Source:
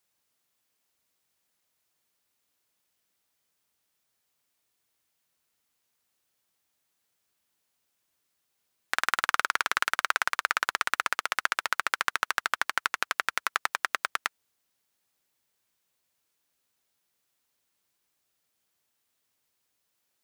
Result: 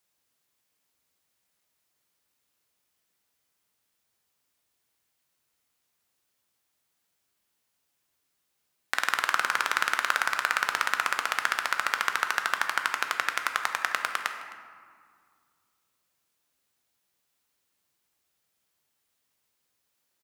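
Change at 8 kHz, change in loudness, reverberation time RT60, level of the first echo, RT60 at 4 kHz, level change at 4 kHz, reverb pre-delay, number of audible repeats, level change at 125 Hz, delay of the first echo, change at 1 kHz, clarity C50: +0.5 dB, +1.0 dB, 2.0 s, -20.0 dB, 1.0 s, +0.5 dB, 11 ms, 1, no reading, 261 ms, +1.0 dB, 7.0 dB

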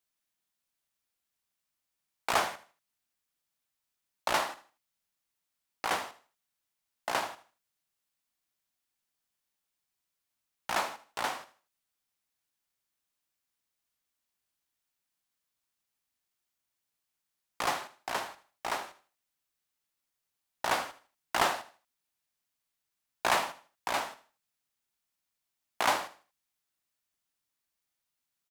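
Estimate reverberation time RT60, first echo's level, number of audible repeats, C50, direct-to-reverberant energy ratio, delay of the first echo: no reverb, -16.0 dB, 2, no reverb, no reverb, 78 ms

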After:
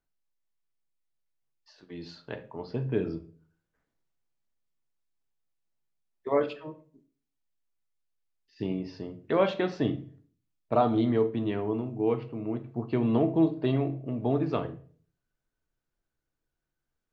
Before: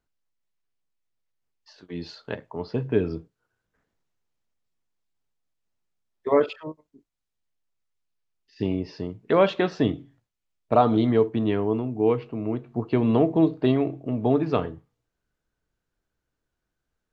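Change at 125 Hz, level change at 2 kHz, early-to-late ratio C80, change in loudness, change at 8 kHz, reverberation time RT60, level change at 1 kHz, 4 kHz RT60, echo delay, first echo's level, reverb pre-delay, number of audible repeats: -3.5 dB, -5.5 dB, 19.5 dB, -5.0 dB, no reading, 0.45 s, -5.5 dB, 0.35 s, no echo, no echo, 3 ms, no echo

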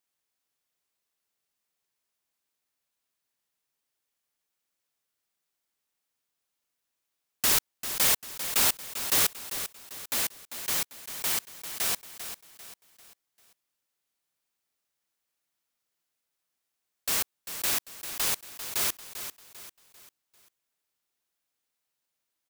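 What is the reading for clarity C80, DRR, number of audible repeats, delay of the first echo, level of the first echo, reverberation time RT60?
no reverb, no reverb, 4, 395 ms, -10.5 dB, no reverb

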